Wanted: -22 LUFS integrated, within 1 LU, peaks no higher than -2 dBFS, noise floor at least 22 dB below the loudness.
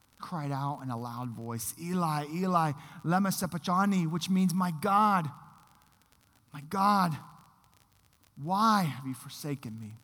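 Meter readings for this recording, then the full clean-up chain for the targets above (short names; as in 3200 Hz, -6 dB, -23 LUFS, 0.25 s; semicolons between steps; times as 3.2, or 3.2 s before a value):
ticks 34/s; loudness -30.0 LUFS; peak -13.0 dBFS; loudness target -22.0 LUFS
-> de-click; gain +8 dB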